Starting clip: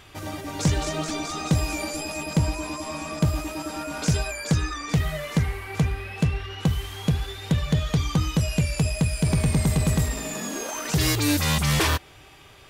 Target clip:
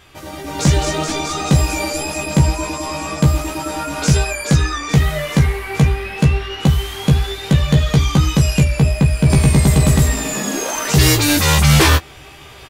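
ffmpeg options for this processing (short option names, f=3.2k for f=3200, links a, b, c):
-filter_complex "[0:a]asettb=1/sr,asplit=3[a][b][c];[a]atrim=end=8.634[d];[b]atrim=start=8.63:end=9.3,asetpts=PTS-STARTPTS,afade=t=in:d=0.004:c=qsin,afade=t=out:st=0.666:d=0.004:c=qsin,equalizer=f=8.2k:t=o:w=2:g=-10[e];[c]atrim=start=9.296[f];[d][e]acrossfade=d=0.004:c1=hsin:c2=qsin[g];[g][f]acrossfade=d=0.004:c1=qsin:c2=hsin,aecho=1:1:15|28:0.708|0.251,dynaudnorm=f=310:g=3:m=11dB"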